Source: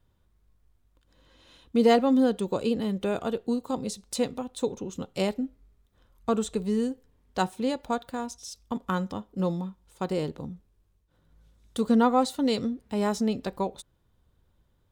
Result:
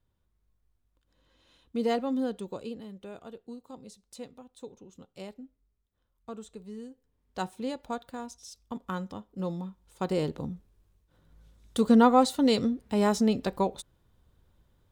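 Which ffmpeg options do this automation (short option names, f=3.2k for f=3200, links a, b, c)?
-af "volume=9.5dB,afade=t=out:st=2.36:d=0.52:silence=0.421697,afade=t=in:st=6.91:d=0.59:silence=0.334965,afade=t=in:st=9.43:d=1.04:silence=0.398107"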